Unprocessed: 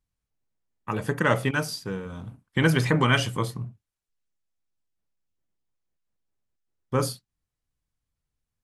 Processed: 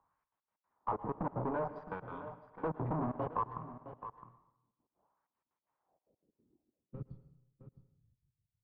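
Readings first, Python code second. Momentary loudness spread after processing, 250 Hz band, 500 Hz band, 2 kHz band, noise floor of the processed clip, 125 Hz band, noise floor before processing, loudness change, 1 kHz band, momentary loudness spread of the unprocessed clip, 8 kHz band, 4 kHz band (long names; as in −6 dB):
13 LU, −13.5 dB, −11.5 dB, −25.5 dB, below −85 dBFS, −16.0 dB, below −85 dBFS, −14.5 dB, −7.0 dB, 18 LU, below −40 dB, below −40 dB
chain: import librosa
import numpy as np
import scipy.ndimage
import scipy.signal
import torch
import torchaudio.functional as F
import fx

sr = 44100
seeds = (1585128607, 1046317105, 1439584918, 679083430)

p1 = fx.low_shelf(x, sr, hz=280.0, db=6.5)
p2 = fx.filter_lfo_bandpass(p1, sr, shape='sine', hz=0.59, low_hz=250.0, high_hz=3200.0, q=1.6)
p3 = fx.over_compress(p2, sr, threshold_db=-37.0, ratio=-1.0)
p4 = p2 + (p3 * 10.0 ** (0.0 / 20.0))
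p5 = fx.tube_stage(p4, sr, drive_db=32.0, bias=0.8)
p6 = fx.filter_sweep_lowpass(p5, sr, from_hz=1000.0, to_hz=110.0, start_s=5.68, end_s=7.38, q=3.4)
p7 = fx.step_gate(p6, sr, bpm=188, pattern='xxx.x.x.x', floor_db=-24.0, edge_ms=4.5)
p8 = p7 + fx.echo_single(p7, sr, ms=663, db=-16.5, dry=0)
p9 = fx.rev_plate(p8, sr, seeds[0], rt60_s=0.68, hf_ratio=0.95, predelay_ms=100, drr_db=14.0)
p10 = fx.band_squash(p9, sr, depth_pct=40)
y = p10 * 10.0 ** (-2.0 / 20.0)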